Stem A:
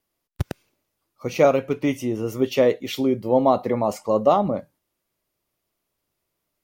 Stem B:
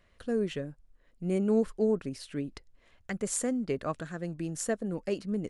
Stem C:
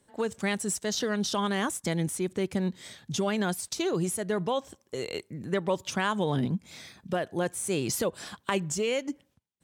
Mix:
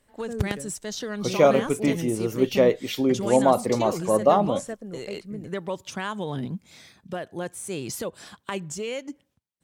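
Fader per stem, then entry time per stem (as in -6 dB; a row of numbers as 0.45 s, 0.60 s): -1.0 dB, -4.5 dB, -3.0 dB; 0.00 s, 0.00 s, 0.00 s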